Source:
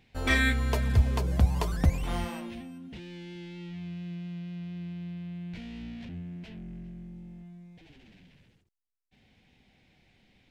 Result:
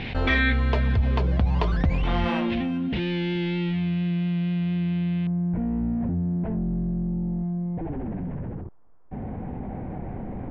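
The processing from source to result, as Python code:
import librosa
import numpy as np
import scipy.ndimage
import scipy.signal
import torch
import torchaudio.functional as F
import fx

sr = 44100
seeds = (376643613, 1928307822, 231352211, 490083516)

y = fx.lowpass(x, sr, hz=fx.steps((0.0, 3800.0), (5.27, 1100.0)), slope=24)
y = fx.env_flatten(y, sr, amount_pct=70)
y = y * librosa.db_to_amplitude(-2.0)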